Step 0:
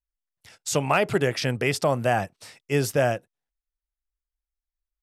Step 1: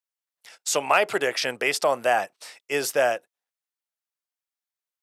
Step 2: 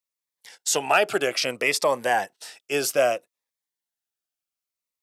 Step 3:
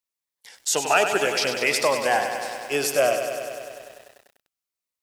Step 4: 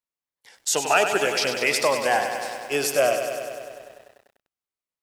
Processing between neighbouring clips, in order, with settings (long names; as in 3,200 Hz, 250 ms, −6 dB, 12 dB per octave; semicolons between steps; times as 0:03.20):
high-pass filter 510 Hz 12 dB per octave; level +3 dB
phaser whose notches keep moving one way falling 0.62 Hz; level +2.5 dB
feedback echo at a low word length 98 ms, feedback 80%, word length 8 bits, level −8 dB
one half of a high-frequency compander decoder only